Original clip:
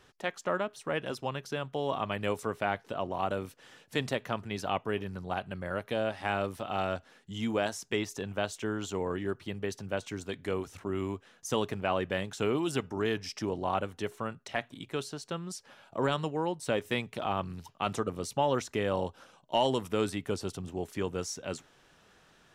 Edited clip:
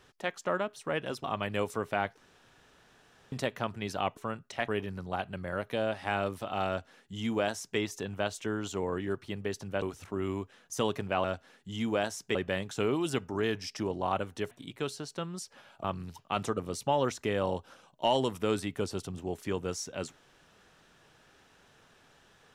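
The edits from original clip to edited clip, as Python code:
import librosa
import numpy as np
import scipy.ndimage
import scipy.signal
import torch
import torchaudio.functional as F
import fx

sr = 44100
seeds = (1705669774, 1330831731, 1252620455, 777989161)

y = fx.edit(x, sr, fx.cut(start_s=1.24, length_s=0.69),
    fx.room_tone_fill(start_s=2.87, length_s=1.14),
    fx.duplicate(start_s=6.86, length_s=1.11, to_s=11.97),
    fx.cut(start_s=10.0, length_s=0.55),
    fx.move(start_s=14.13, length_s=0.51, to_s=4.86),
    fx.cut(start_s=15.97, length_s=1.37), tone=tone)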